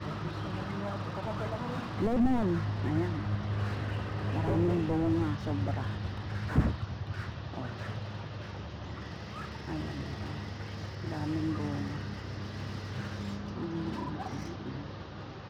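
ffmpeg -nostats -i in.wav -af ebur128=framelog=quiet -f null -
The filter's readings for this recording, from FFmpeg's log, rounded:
Integrated loudness:
  I:         -34.4 LUFS
  Threshold: -44.4 LUFS
Loudness range:
  LRA:         8.5 LU
  Threshold: -54.1 LUFS
  LRA low:   -39.6 LUFS
  LRA high:  -31.1 LUFS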